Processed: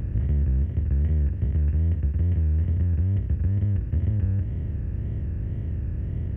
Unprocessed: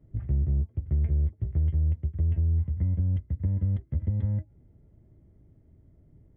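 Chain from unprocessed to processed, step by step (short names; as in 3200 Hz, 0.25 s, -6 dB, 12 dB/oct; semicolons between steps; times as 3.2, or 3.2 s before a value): per-bin compression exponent 0.2; wow and flutter 120 cents; formant shift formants -2 st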